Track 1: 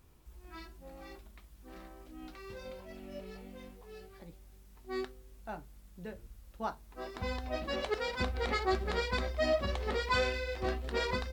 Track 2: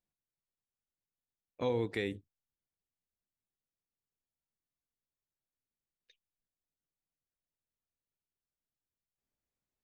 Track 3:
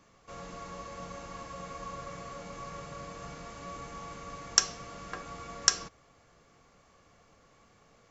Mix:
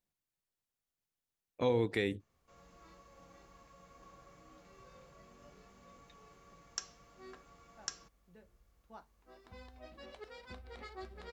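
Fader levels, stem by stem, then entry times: −16.5, +2.0, −17.5 decibels; 2.30, 0.00, 2.20 seconds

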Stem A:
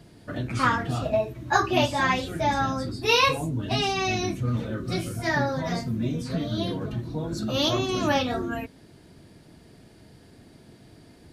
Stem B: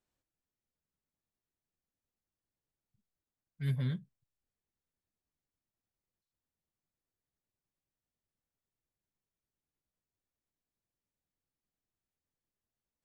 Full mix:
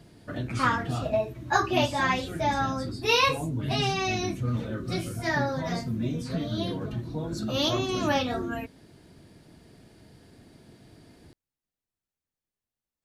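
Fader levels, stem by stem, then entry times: −2.0, −0.5 decibels; 0.00, 0.00 seconds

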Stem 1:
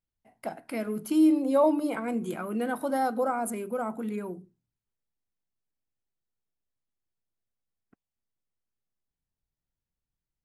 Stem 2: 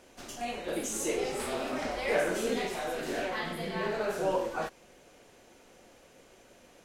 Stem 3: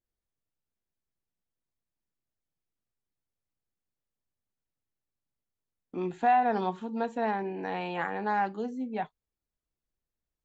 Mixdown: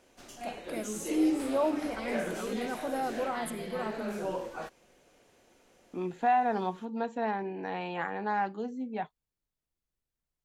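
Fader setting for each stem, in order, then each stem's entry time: −6.0, −6.0, −2.0 decibels; 0.00, 0.00, 0.00 seconds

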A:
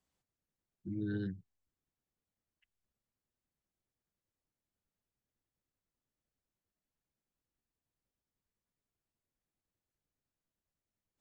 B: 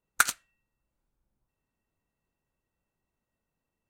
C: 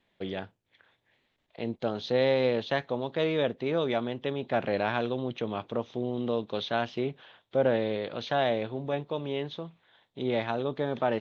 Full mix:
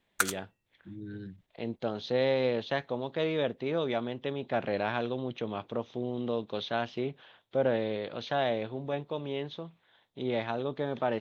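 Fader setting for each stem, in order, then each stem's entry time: −5.0, −4.5, −2.5 decibels; 0.00, 0.00, 0.00 seconds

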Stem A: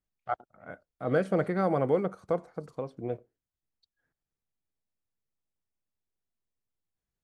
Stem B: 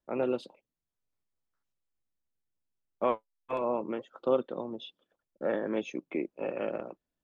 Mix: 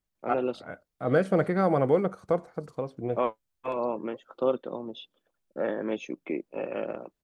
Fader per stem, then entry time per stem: +3.0, +1.0 decibels; 0.00, 0.15 seconds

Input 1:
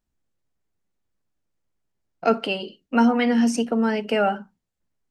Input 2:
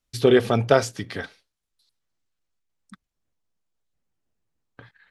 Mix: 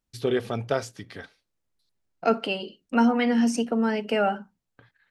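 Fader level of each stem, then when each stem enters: −2.5, −8.5 decibels; 0.00, 0.00 seconds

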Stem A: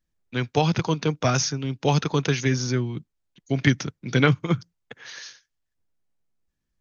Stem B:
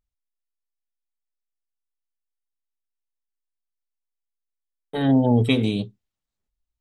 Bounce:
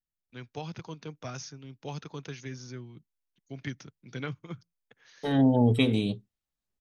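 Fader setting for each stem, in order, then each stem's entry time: −17.5, −4.0 decibels; 0.00, 0.30 seconds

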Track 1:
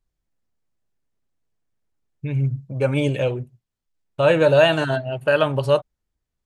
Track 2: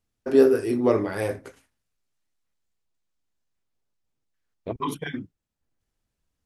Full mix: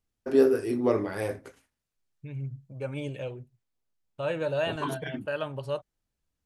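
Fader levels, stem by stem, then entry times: −14.0, −4.0 decibels; 0.00, 0.00 seconds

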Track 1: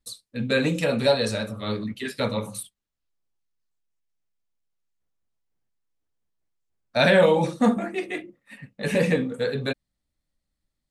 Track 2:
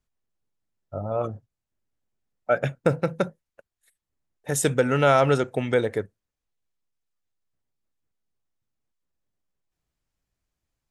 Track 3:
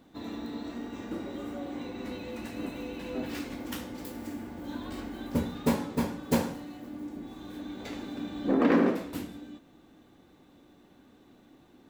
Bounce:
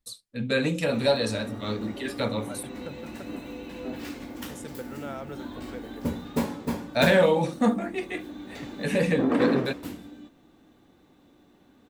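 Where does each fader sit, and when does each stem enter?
−2.5, −20.0, −0.5 decibels; 0.00, 0.00, 0.70 seconds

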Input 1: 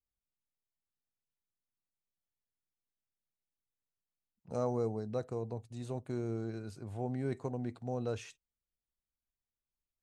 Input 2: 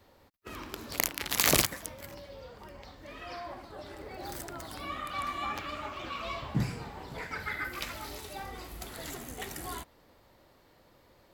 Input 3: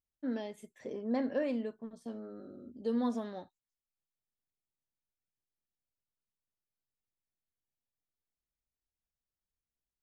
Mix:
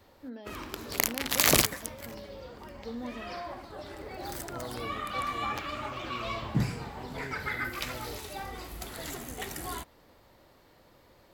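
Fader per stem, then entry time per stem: −8.5, +2.0, −7.0 decibels; 0.00, 0.00, 0.00 seconds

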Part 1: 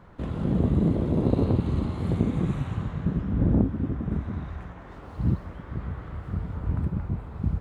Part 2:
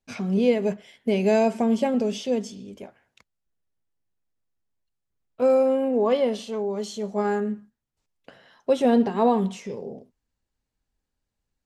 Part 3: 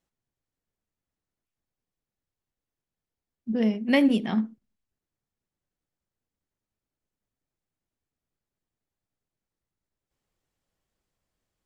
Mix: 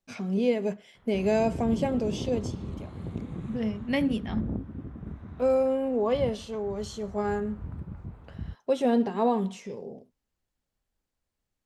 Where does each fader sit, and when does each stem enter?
−11.0, −4.5, −6.0 decibels; 0.95, 0.00, 0.00 seconds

